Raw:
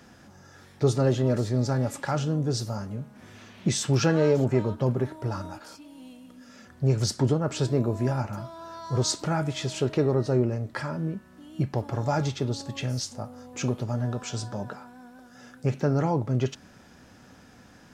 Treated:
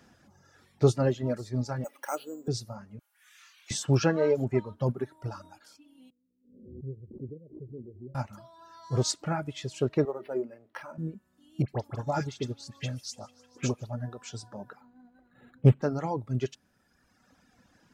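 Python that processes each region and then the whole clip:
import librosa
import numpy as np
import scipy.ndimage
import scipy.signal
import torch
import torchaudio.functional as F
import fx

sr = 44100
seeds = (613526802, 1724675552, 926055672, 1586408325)

y = fx.chain(x, sr, fx.highpass(hz=290.0, slope=24),
    fx.resample_bad(factor=6, down='filtered', up='hold'), at=(1.84, 2.48))
y = fx.chain(y, sr, fx.highpass(hz=1100.0, slope=24),
    fx.high_shelf(hz=6700.0, db=10.5),
    fx.room_flutter(wall_m=3.9, rt60_s=0.41), at=(2.99, 3.71))
y = fx.chain(y, sr, fx.steep_lowpass(hz=510.0, slope=72),
    fx.comb_fb(f0_hz=370.0, decay_s=0.85, harmonics='all', damping=0.0, mix_pct=70),
    fx.pre_swell(db_per_s=55.0), at=(6.1, 8.15))
y = fx.chain(y, sr, fx.highpass(hz=290.0, slope=12),
    fx.hum_notches(base_hz=50, count=8),
    fx.resample_linear(factor=6), at=(10.05, 10.98))
y = fx.chain(y, sr, fx.dispersion(late='highs', ms=68.0, hz=1800.0),
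    fx.echo_wet_highpass(ms=151, feedback_pct=71, hz=1600.0, wet_db=-11), at=(11.62, 13.93))
y = fx.chain(y, sr, fx.low_shelf(hz=320.0, db=7.5),
    fx.resample_linear(factor=8), at=(14.81, 15.82))
y = fx.dereverb_blind(y, sr, rt60_s=1.8)
y = fx.upward_expand(y, sr, threshold_db=-34.0, expansion=1.5)
y = y * 10.0 ** (2.5 / 20.0)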